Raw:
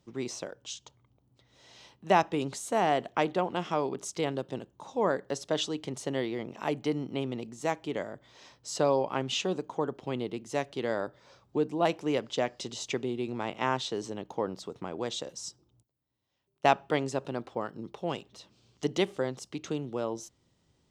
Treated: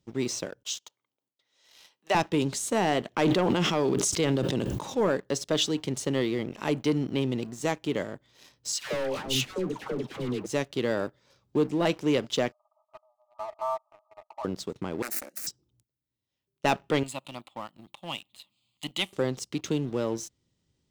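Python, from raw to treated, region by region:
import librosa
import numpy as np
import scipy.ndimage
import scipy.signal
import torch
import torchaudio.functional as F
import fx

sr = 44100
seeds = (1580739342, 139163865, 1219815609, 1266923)

y = fx.chain(x, sr, fx.gate_hold(open_db=-56.0, close_db=-64.0, hold_ms=71.0, range_db=-21, attack_ms=1.4, release_ms=100.0),
    fx.highpass(hz=600.0, slope=12), at=(0.63, 2.15))
y = fx.chain(y, sr, fx.highpass(hz=50.0, slope=12),
    fx.sustainer(db_per_s=24.0), at=(3.08, 5.01))
y = fx.chain(y, sr, fx.clip_hard(threshold_db=-30.5),
    fx.dispersion(late='lows', ms=141.0, hz=890.0), at=(8.72, 10.46))
y = fx.chain(y, sr, fx.brickwall_bandpass(low_hz=600.0, high_hz=1300.0),
    fx.peak_eq(hz=940.0, db=-8.0, octaves=0.25),
    fx.comb(ms=3.3, depth=0.92), at=(12.52, 14.45))
y = fx.chain(y, sr, fx.self_delay(depth_ms=0.86),
    fx.highpass(hz=190.0, slope=12),
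    fx.fixed_phaser(hz=670.0, stages=8), at=(15.02, 15.47))
y = fx.chain(y, sr, fx.highpass(hz=490.0, slope=6),
    fx.high_shelf(hz=4300.0, db=8.0),
    fx.fixed_phaser(hz=1600.0, stages=6), at=(17.03, 19.13))
y = fx.peak_eq(y, sr, hz=900.0, db=-7.0, octaves=1.9)
y = fx.notch(y, sr, hz=700.0, q=19.0)
y = fx.leveller(y, sr, passes=2)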